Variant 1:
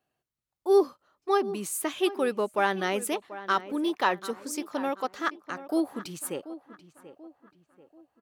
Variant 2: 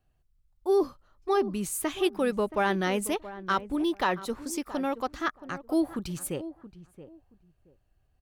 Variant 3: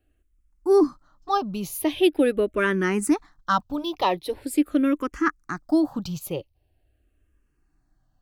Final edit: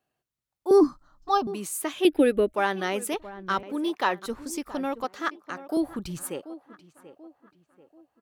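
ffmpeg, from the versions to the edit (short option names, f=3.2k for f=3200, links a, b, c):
-filter_complex "[2:a]asplit=2[a][b];[1:a]asplit=3[c][d][e];[0:a]asplit=6[f][g][h][i][j][k];[f]atrim=end=0.712[l];[a]atrim=start=0.708:end=1.472[m];[g]atrim=start=1.468:end=2.052[n];[b]atrim=start=2.048:end=2.542[o];[h]atrim=start=2.538:end=3.142[p];[c]atrim=start=3.138:end=3.632[q];[i]atrim=start=3.628:end=4.262[r];[d]atrim=start=4.258:end=5.042[s];[j]atrim=start=5.038:end=5.772[t];[e]atrim=start=5.768:end=6.232[u];[k]atrim=start=6.228[v];[l][m]acrossfade=d=0.004:c1=hsin:c2=hsin[w];[w][n]acrossfade=d=0.004:c1=hsin:c2=hsin[x];[x][o]acrossfade=d=0.004:c1=hsin:c2=hsin[y];[y][p]acrossfade=d=0.004:c1=hsin:c2=hsin[z];[z][q]acrossfade=d=0.004:c1=hsin:c2=hsin[aa];[aa][r]acrossfade=d=0.004:c1=hsin:c2=hsin[ab];[ab][s]acrossfade=d=0.004:c1=hsin:c2=hsin[ac];[ac][t]acrossfade=d=0.004:c1=hsin:c2=hsin[ad];[ad][u]acrossfade=d=0.004:c1=hsin:c2=hsin[ae];[ae][v]acrossfade=d=0.004:c1=hsin:c2=hsin"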